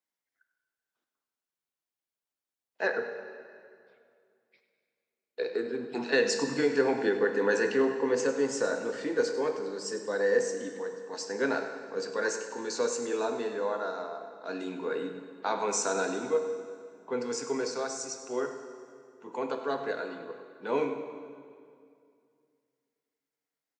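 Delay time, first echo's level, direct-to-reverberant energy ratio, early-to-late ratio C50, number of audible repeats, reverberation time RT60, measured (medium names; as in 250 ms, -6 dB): 100 ms, -13.0 dB, 5.5 dB, 6.5 dB, 2, 2.3 s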